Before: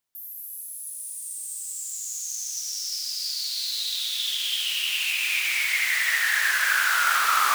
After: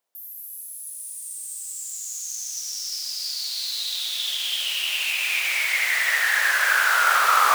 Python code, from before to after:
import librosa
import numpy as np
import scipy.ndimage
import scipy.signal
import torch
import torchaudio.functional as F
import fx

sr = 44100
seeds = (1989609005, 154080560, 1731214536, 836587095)

y = fx.highpass(x, sr, hz=300.0, slope=6)
y = fx.peak_eq(y, sr, hz=570.0, db=13.0, octaves=1.6)